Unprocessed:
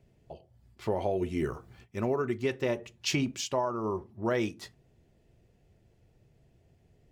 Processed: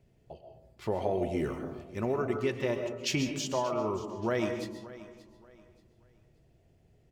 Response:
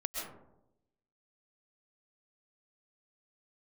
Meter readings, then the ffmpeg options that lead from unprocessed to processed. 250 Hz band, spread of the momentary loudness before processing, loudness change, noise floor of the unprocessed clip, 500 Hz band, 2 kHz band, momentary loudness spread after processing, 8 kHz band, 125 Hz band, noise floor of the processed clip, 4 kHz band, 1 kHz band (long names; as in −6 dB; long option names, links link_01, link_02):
−0.5 dB, 18 LU, −0.5 dB, −66 dBFS, 0.0 dB, −0.5 dB, 17 LU, −1.0 dB, −0.5 dB, −65 dBFS, −1.0 dB, −0.5 dB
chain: -filter_complex "[0:a]aecho=1:1:580|1160|1740:0.133|0.04|0.012,asplit=2[link_01][link_02];[1:a]atrim=start_sample=2205[link_03];[link_02][link_03]afir=irnorm=-1:irlink=0,volume=-2dB[link_04];[link_01][link_04]amix=inputs=2:normalize=0,volume=-6dB"